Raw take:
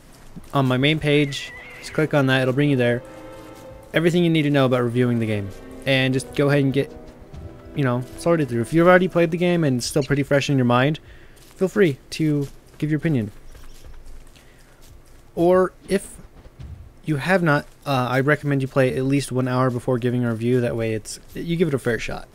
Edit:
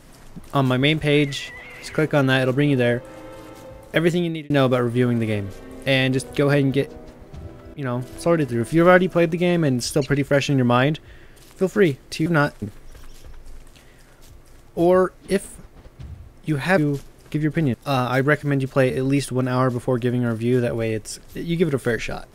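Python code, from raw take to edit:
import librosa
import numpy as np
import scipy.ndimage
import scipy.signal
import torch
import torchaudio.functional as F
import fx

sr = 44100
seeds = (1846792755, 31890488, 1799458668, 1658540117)

y = fx.edit(x, sr, fx.fade_out_span(start_s=4.05, length_s=0.45),
    fx.fade_in_from(start_s=7.74, length_s=0.29, floor_db=-15.5),
    fx.swap(start_s=12.26, length_s=0.96, other_s=17.38, other_length_s=0.36), tone=tone)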